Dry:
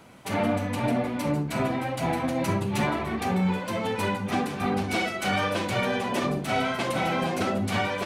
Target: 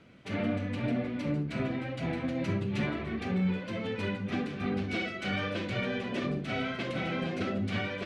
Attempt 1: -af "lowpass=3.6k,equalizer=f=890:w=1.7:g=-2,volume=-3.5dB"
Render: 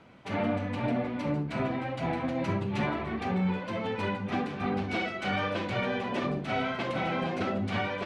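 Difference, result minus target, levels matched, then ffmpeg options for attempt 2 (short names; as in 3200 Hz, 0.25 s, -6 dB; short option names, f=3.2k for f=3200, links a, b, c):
1000 Hz band +6.0 dB
-af "lowpass=3.6k,equalizer=f=890:w=1.7:g=-13.5,volume=-3.5dB"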